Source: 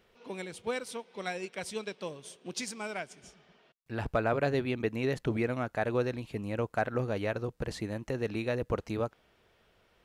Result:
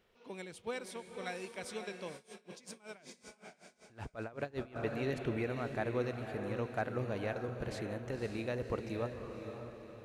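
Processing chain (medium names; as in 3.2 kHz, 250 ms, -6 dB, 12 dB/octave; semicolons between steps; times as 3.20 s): echo that smears into a reverb 538 ms, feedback 46%, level -6.5 dB; 2.15–4.76 s: logarithmic tremolo 5.3 Hz, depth 22 dB; trim -6 dB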